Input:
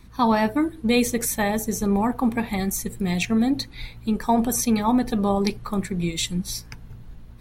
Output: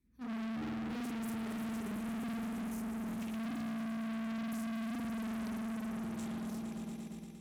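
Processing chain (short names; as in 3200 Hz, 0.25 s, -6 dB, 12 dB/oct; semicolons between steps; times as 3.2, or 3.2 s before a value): graphic EQ 125/250/500/1000/4000 Hz -5/+7/+4/-12/-10 dB; on a send: swelling echo 0.116 s, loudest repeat 5, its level -10 dB; on the sum: spring tank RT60 1.7 s, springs 49 ms, chirp 75 ms, DRR -5 dB; overloaded stage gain 19.5 dB; gate -18 dBFS, range -41 dB; HPF 41 Hz; bell 590 Hz -7 dB 1.5 oct; gain +14 dB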